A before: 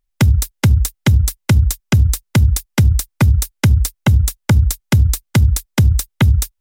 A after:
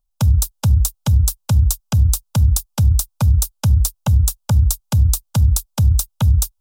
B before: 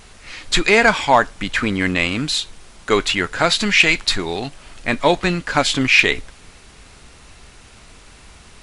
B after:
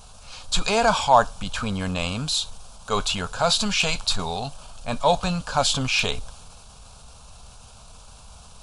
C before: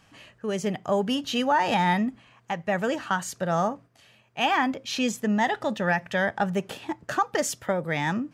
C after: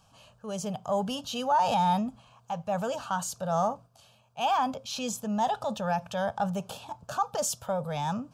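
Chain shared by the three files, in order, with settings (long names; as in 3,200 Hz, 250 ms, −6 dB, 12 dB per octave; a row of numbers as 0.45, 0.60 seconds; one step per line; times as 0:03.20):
phaser with its sweep stopped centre 810 Hz, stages 4
transient designer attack −3 dB, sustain +3 dB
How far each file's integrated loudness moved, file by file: −2.0, −6.0, −3.5 LU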